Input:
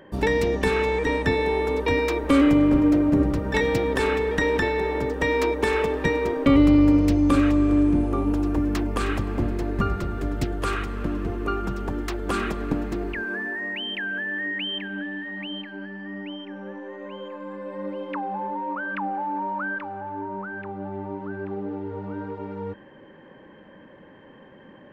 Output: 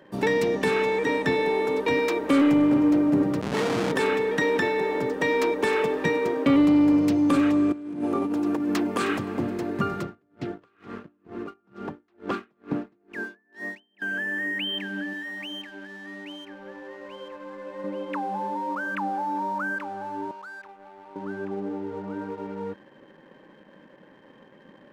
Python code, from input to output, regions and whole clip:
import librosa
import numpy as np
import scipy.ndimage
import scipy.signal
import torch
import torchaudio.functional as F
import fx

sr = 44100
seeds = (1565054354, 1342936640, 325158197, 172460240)

y = fx.chain(x, sr, fx.schmitt(flips_db=-23.5),
    fx.air_absorb(metres=66.0), at=(3.41, 3.92))
y = fx.chain(y, sr, fx.highpass(hz=130.0, slope=12),
    fx.over_compress(threshold_db=-25.0, ratio=-0.5), at=(7.72, 9.17))
y = fx.chain(y, sr, fx.air_absorb(metres=170.0),
    fx.tremolo_db(hz=2.2, depth_db=33), at=(10.03, 14.02))
y = fx.chain(y, sr, fx.low_shelf(hz=300.0, db=-11.0),
    fx.doubler(ms=13.0, db=-14), at=(15.13, 17.84))
y = fx.chain(y, sr, fx.highpass(hz=1200.0, slope=12),
    fx.tilt_eq(slope=-3.5), at=(20.31, 21.16))
y = scipy.signal.sosfilt(scipy.signal.butter(4, 130.0, 'highpass', fs=sr, output='sos'), y)
y = fx.leveller(y, sr, passes=1)
y = y * librosa.db_to_amplitude(-4.0)